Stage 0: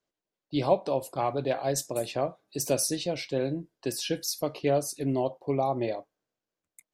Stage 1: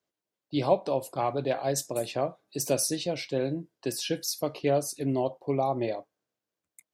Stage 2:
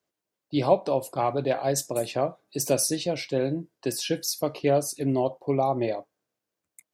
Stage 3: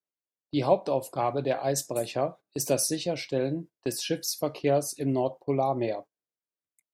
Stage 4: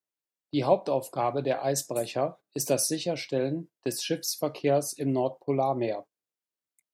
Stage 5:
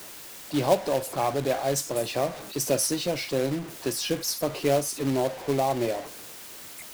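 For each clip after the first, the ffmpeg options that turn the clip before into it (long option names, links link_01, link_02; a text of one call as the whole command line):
ffmpeg -i in.wav -af "highpass=56" out.wav
ffmpeg -i in.wav -af "equalizer=frequency=3500:width_type=o:width=0.77:gain=-2,volume=3dB" out.wav
ffmpeg -i in.wav -af "agate=range=-15dB:threshold=-40dB:ratio=16:detection=peak,volume=-2dB" out.wav
ffmpeg -i in.wav -af "highpass=94" out.wav
ffmpeg -i in.wav -af "aeval=exprs='val(0)+0.5*0.02*sgn(val(0))':channel_layout=same,acrusher=bits=3:mode=log:mix=0:aa=0.000001" out.wav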